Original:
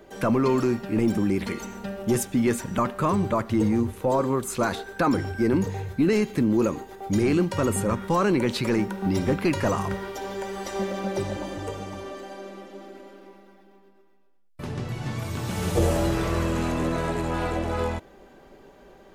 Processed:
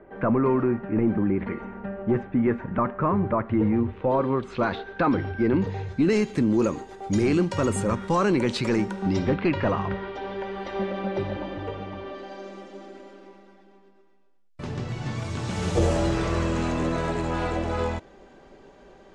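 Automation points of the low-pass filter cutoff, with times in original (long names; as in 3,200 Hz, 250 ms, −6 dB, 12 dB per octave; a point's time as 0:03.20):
low-pass filter 24 dB per octave
0:03.25 2,000 Hz
0:04.44 3,700 Hz
0:05.57 3,700 Hz
0:06.11 8,500 Hz
0:08.98 8,500 Hz
0:09.42 3,600 Hz
0:12.03 3,600 Hz
0:12.58 7,900 Hz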